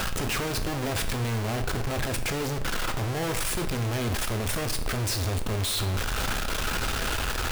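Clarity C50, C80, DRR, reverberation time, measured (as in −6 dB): 10.5 dB, 13.0 dB, 6.0 dB, 0.80 s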